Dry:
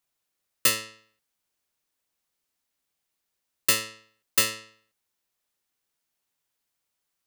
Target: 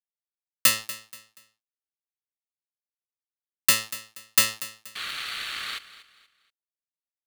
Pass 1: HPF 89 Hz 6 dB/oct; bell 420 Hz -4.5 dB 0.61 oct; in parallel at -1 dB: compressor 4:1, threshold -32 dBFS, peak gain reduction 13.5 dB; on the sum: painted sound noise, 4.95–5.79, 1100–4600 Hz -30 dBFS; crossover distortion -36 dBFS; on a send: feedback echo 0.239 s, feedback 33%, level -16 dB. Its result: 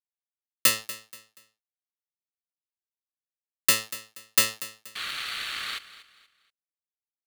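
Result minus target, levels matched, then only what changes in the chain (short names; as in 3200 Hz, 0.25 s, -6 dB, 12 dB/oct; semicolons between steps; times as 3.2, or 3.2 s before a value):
compressor: peak gain reduction +5.5 dB; 500 Hz band +3.5 dB
change: bell 420 Hz -12 dB 0.61 oct; change: compressor 4:1, threshold -24.5 dBFS, peak gain reduction 7.5 dB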